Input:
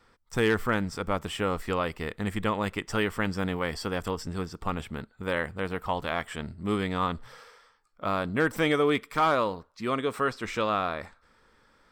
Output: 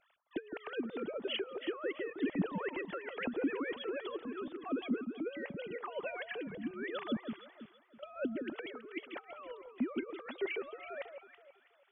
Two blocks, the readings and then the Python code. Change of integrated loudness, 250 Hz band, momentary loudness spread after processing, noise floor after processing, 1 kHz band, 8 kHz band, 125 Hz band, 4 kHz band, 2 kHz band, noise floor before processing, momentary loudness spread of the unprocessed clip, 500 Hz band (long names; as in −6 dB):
−10.5 dB, −7.0 dB, 12 LU, −68 dBFS, −17.5 dB, below −35 dB, −17.5 dB, −9.5 dB, −11.5 dB, −64 dBFS, 10 LU, −10.0 dB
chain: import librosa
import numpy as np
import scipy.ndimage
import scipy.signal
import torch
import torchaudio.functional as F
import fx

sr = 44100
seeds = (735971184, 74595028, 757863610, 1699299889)

y = fx.sine_speech(x, sr)
y = fx.over_compress(y, sr, threshold_db=-33.0, ratio=-1.0)
y = fx.hpss(y, sr, part='harmonic', gain_db=-11)
y = fx.peak_eq(y, sr, hz=1200.0, db=-13.0, octaves=2.3)
y = fx.echo_alternate(y, sr, ms=163, hz=1100.0, feedback_pct=56, wet_db=-6.5)
y = y * librosa.db_to_amplitude(3.0)